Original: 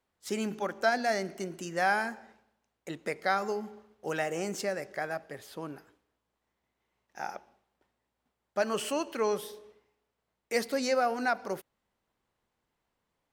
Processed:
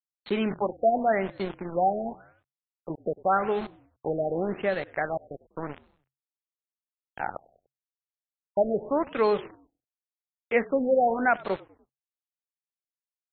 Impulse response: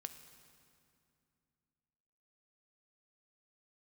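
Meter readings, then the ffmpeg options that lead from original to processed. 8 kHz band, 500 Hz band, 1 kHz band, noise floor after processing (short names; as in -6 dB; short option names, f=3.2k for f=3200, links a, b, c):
under -35 dB, +6.0 dB, +5.0 dB, under -85 dBFS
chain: -filter_complex "[0:a]aeval=exprs='val(0)*gte(abs(val(0)),0.0119)':c=same,asplit=4[a][b][c][d];[b]adelay=98,afreqshift=-45,volume=-23dB[e];[c]adelay=196,afreqshift=-90,volume=-29.4dB[f];[d]adelay=294,afreqshift=-135,volume=-35.8dB[g];[a][e][f][g]amix=inputs=4:normalize=0,afftfilt=real='re*lt(b*sr/1024,760*pow(4400/760,0.5+0.5*sin(2*PI*0.89*pts/sr)))':imag='im*lt(b*sr/1024,760*pow(4400/760,0.5+0.5*sin(2*PI*0.89*pts/sr)))':win_size=1024:overlap=0.75,volume=6dB"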